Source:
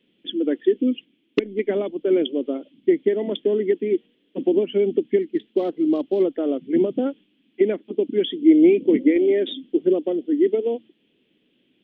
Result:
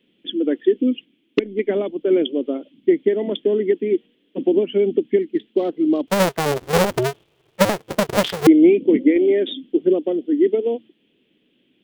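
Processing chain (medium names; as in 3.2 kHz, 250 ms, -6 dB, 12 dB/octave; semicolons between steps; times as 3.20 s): 6.07–8.47 s: cycle switcher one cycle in 2, inverted; trim +2 dB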